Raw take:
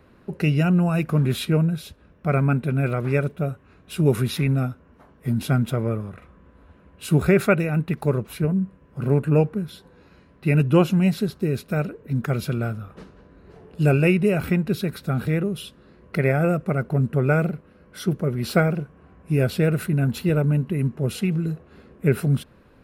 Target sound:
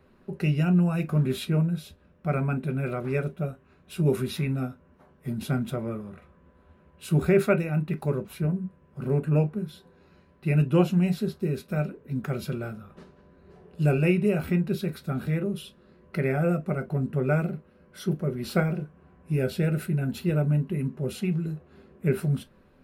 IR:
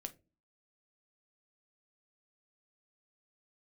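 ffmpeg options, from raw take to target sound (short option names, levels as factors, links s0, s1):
-filter_complex "[0:a]asettb=1/sr,asplit=3[s0][s1][s2];[s0]atrim=end=19.374[s3];[s1]atrim=start=19.37:end=20.21,asetpts=PTS-STARTPTS,afade=t=in:d=0.004:c=qsin,afade=t=out:st=0.836:d=0.004:c=qsin,asuperstop=centerf=1100:order=4:qfactor=5.1[s4];[s2]atrim=start=20.206[s5];[s3][s4]acrossfade=d=0.004:c1=hsin:c2=qsin[s6];[s6][s5]acrossfade=d=0.004:c1=qsin:c2=hsin[s7];[1:a]atrim=start_sample=2205,atrim=end_sample=3528,asetrate=57330,aresample=44100[s8];[s7][s8]afir=irnorm=-1:irlink=0"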